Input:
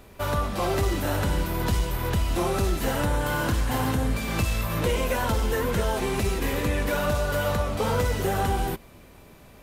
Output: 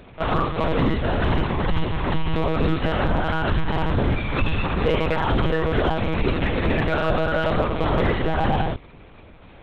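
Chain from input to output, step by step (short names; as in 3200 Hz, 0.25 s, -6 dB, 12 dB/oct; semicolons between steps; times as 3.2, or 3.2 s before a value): monotone LPC vocoder at 8 kHz 160 Hz; in parallel at -4 dB: overloaded stage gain 17.5 dB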